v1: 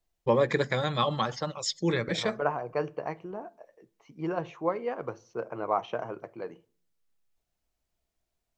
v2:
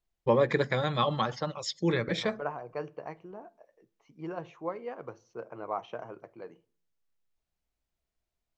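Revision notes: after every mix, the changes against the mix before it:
first voice: add distance through air 82 m; second voice -6.5 dB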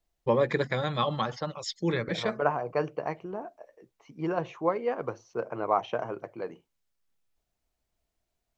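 second voice +9.5 dB; reverb: off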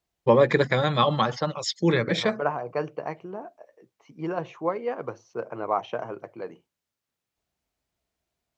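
first voice +6.5 dB; master: add high-pass 74 Hz

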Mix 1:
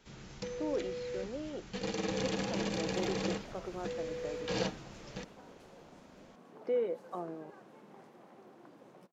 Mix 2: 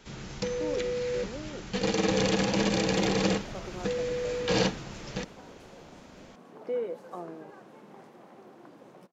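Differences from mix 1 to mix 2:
first sound +9.0 dB; second sound +5.0 dB

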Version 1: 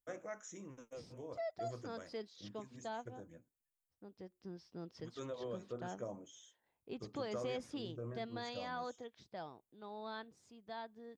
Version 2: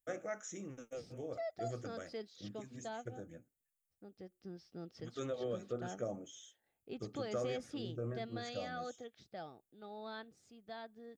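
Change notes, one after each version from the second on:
first voice +4.5 dB; master: add Butterworth band-stop 990 Hz, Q 4.3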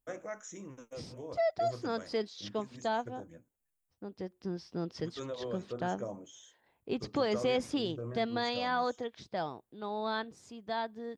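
second voice +11.5 dB; master: remove Butterworth band-stop 990 Hz, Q 4.3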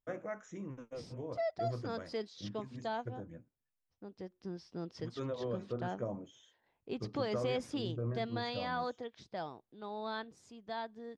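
first voice: add tone controls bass +6 dB, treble -15 dB; second voice -5.5 dB

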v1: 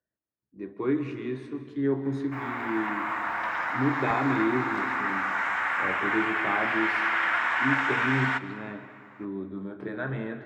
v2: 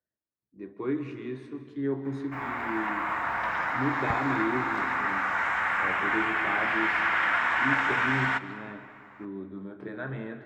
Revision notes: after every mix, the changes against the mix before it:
speech -3.5 dB; background: add bass shelf 260 Hz +9.5 dB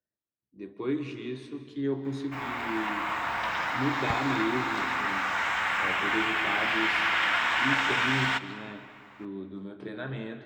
master: add resonant high shelf 2.4 kHz +8 dB, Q 1.5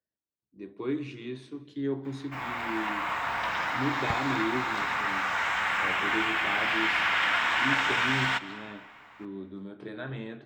speech: send -11.5 dB

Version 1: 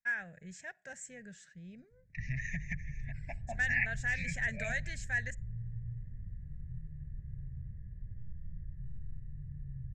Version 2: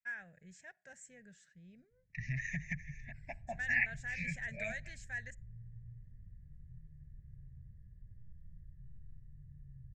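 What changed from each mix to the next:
first voice -8.0 dB; background -10.0 dB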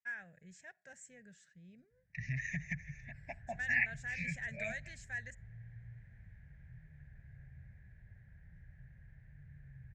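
background: remove boxcar filter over 58 samples; master: add high-pass 43 Hz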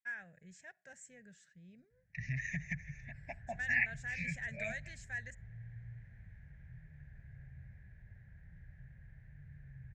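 background: send +11.5 dB

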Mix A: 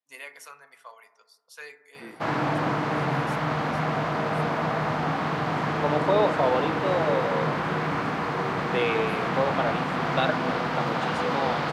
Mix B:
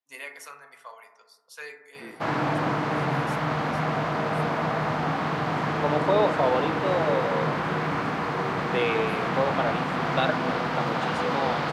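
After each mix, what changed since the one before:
first voice: send +7.0 dB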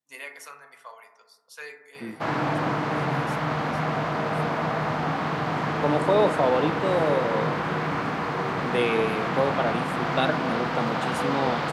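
second voice: remove band-pass 420–5000 Hz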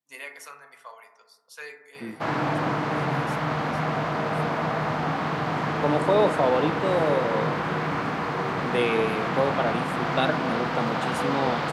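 no change

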